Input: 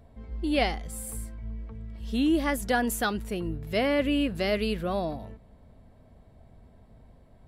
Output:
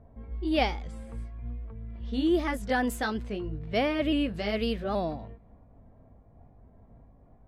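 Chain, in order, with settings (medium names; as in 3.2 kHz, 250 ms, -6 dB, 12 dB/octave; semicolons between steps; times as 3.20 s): sawtooth pitch modulation +1.5 st, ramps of 825 ms; treble shelf 8.6 kHz -12 dB; level-controlled noise filter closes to 1.2 kHz, open at -25.5 dBFS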